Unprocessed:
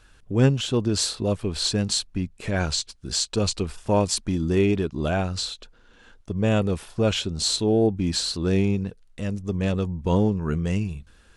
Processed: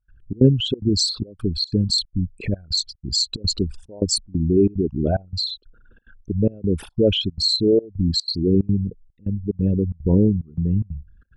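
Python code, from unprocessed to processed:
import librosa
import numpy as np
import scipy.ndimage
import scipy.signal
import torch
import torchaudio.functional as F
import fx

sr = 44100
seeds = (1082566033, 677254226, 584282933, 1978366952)

y = fx.envelope_sharpen(x, sr, power=3.0)
y = fx.step_gate(y, sr, bpm=183, pattern='.xxx.xxxx.xxxxx.', floor_db=-24.0, edge_ms=4.5)
y = y * 10.0 ** (4.5 / 20.0)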